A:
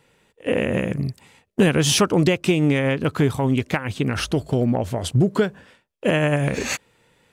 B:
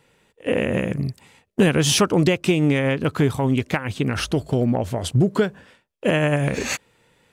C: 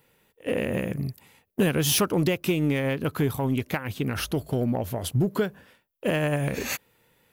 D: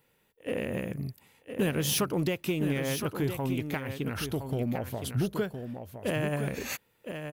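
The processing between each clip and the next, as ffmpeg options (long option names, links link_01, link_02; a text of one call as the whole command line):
ffmpeg -i in.wav -af anull out.wav
ffmpeg -i in.wav -filter_complex "[0:a]asplit=2[link_01][link_02];[link_02]asoftclip=type=hard:threshold=-18dB,volume=-11.5dB[link_03];[link_01][link_03]amix=inputs=2:normalize=0,aexciter=amount=5.5:drive=6.6:freq=11000,volume=-7dB" out.wav
ffmpeg -i in.wav -af "aecho=1:1:1014:0.398,volume=-5.5dB" out.wav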